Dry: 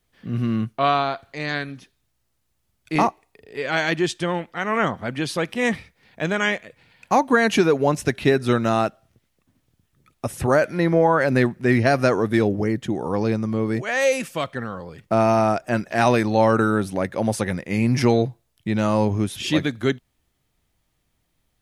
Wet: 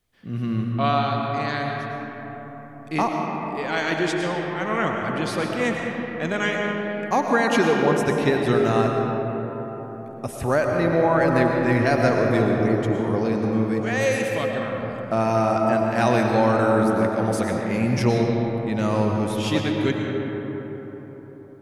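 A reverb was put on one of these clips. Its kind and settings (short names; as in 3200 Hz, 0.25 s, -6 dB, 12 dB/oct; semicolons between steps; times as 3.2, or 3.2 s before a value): digital reverb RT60 4.6 s, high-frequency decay 0.35×, pre-delay 70 ms, DRR 0.5 dB; gain -3.5 dB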